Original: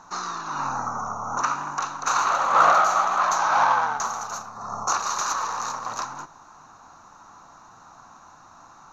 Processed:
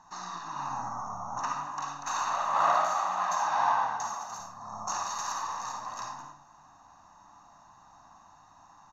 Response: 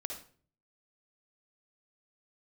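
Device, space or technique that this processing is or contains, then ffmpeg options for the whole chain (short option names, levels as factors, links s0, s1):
microphone above a desk: -filter_complex "[0:a]aecho=1:1:1.1:0.59[s0];[1:a]atrim=start_sample=2205[s1];[s0][s1]afir=irnorm=-1:irlink=0,asettb=1/sr,asplit=3[s2][s3][s4];[s2]atrim=end=2.644[s5];[s3]atrim=start=2.64:end=4.4,asetpts=PTS-STARTPTS,afade=t=in:d=0.004:c=qsin,afade=t=out:st=1.756:d=0.004:c=qsin,highpass=100[s6];[s4]atrim=start=4.396[s7];[s5][s6]acrossfade=d=0.004:c1=hsin:c2=qsin[s8];[s8][s7]acrossfade=d=0.004:c1=qsin:c2=hsin,volume=0.376"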